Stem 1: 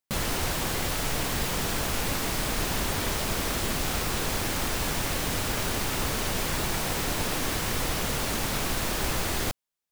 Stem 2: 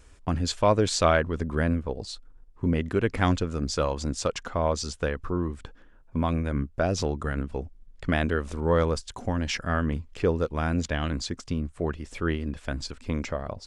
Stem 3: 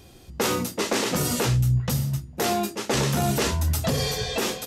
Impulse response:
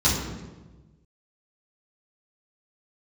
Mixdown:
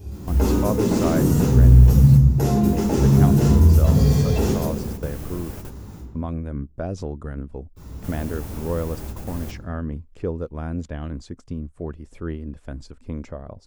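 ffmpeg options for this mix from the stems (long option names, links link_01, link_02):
-filter_complex "[0:a]volume=-5.5dB,asplit=3[link_01][link_02][link_03];[link_01]atrim=end=6,asetpts=PTS-STARTPTS,afade=type=out:start_time=5.996:duration=0.004:curve=hsin[link_04];[link_02]atrim=start=6:end=7.76,asetpts=PTS-STARTPTS,volume=0[link_05];[link_03]atrim=start=7.76,asetpts=PTS-STARTPTS,afade=type=in:duration=0.004:curve=hsin[link_06];[link_04][link_05][link_06]concat=n=3:v=0:a=1,asplit=2[link_07][link_08];[link_08]volume=-23.5dB[link_09];[1:a]adynamicequalizer=threshold=0.00708:dfrequency=3300:dqfactor=0.7:tfrequency=3300:tqfactor=0.7:attack=5:release=100:ratio=0.375:range=1.5:mode=cutabove:tftype=highshelf,volume=-1dB,asplit=2[link_10][link_11];[2:a]acompressor=threshold=-26dB:ratio=6,volume=2dB,asplit=2[link_12][link_13];[link_13]volume=-11dB[link_14];[link_11]apad=whole_len=437270[link_15];[link_07][link_15]sidechaingate=range=-33dB:threshold=-40dB:ratio=16:detection=peak[link_16];[3:a]atrim=start_sample=2205[link_17];[link_09][link_14]amix=inputs=2:normalize=0[link_18];[link_18][link_17]afir=irnorm=-1:irlink=0[link_19];[link_16][link_10][link_12][link_19]amix=inputs=4:normalize=0,equalizer=frequency=3300:width=0.32:gain=-12.5"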